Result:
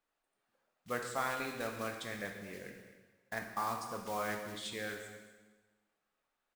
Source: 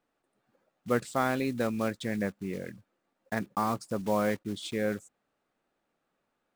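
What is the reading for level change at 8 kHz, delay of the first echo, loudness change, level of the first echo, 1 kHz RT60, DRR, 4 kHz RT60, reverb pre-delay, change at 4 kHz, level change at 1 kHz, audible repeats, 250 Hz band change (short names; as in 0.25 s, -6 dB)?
-2.0 dB, 0.239 s, -8.0 dB, -14.5 dB, 1.3 s, 2.0 dB, 1.2 s, 6 ms, -2.5 dB, -5.0 dB, 1, -14.5 dB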